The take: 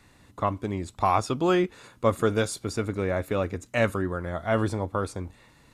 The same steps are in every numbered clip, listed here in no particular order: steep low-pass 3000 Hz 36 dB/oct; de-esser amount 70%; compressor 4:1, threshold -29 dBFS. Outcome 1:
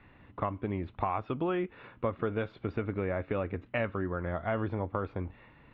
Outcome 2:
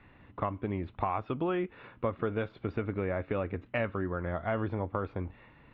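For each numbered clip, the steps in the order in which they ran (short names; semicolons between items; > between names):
compressor > de-esser > steep low-pass; de-esser > steep low-pass > compressor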